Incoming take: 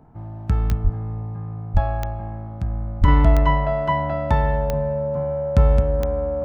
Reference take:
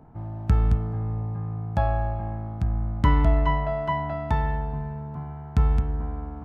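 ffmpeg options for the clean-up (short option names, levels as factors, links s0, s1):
-filter_complex "[0:a]adeclick=t=4,bandreject=f=560:w=30,asplit=3[s0][s1][s2];[s0]afade=t=out:st=0.83:d=0.02[s3];[s1]highpass=f=140:w=0.5412,highpass=f=140:w=1.3066,afade=t=in:st=0.83:d=0.02,afade=t=out:st=0.95:d=0.02[s4];[s2]afade=t=in:st=0.95:d=0.02[s5];[s3][s4][s5]amix=inputs=3:normalize=0,asplit=3[s6][s7][s8];[s6]afade=t=out:st=1.73:d=0.02[s9];[s7]highpass=f=140:w=0.5412,highpass=f=140:w=1.3066,afade=t=in:st=1.73:d=0.02,afade=t=out:st=1.85:d=0.02[s10];[s8]afade=t=in:st=1.85:d=0.02[s11];[s9][s10][s11]amix=inputs=3:normalize=0,asplit=3[s12][s13][s14];[s12]afade=t=out:st=3:d=0.02[s15];[s13]highpass=f=140:w=0.5412,highpass=f=140:w=1.3066,afade=t=in:st=3:d=0.02,afade=t=out:st=3.12:d=0.02[s16];[s14]afade=t=in:st=3.12:d=0.02[s17];[s15][s16][s17]amix=inputs=3:normalize=0,asetnsamples=n=441:p=0,asendcmd='3.08 volume volume -5dB',volume=1"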